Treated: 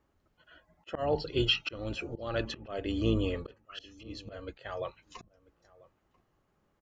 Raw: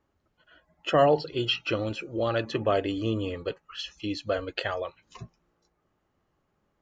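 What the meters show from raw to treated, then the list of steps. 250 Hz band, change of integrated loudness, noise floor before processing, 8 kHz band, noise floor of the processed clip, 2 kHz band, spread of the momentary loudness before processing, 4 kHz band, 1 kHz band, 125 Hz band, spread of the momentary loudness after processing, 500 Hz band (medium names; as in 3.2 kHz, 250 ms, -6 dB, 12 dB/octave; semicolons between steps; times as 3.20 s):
-3.5 dB, -5.0 dB, -75 dBFS, no reading, -75 dBFS, -5.0 dB, 15 LU, -1.5 dB, -11.0 dB, -2.5 dB, 18 LU, -8.0 dB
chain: octave divider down 2 oct, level -5 dB; slow attack 364 ms; echo from a far wall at 170 m, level -22 dB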